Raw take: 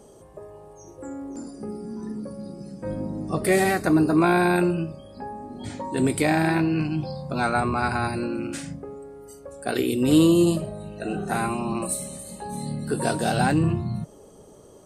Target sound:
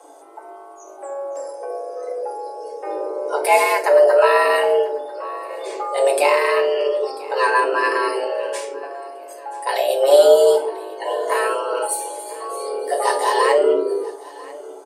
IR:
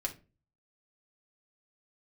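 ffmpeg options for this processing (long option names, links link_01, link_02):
-filter_complex "[0:a]aecho=1:1:992|1984|2976:0.0891|0.0383|0.0165[link_01];[1:a]atrim=start_sample=2205[link_02];[link_01][link_02]afir=irnorm=-1:irlink=0,afreqshift=280,volume=3dB"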